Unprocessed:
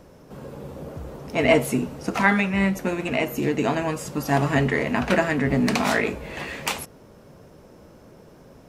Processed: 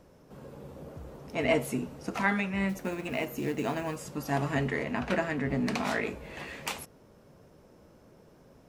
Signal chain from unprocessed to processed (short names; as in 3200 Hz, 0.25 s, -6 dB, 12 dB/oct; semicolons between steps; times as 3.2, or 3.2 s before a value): 2.69–3.97 companded quantiser 6-bit; 4.84–6.02 high shelf 7300 Hz -6 dB; gain -8.5 dB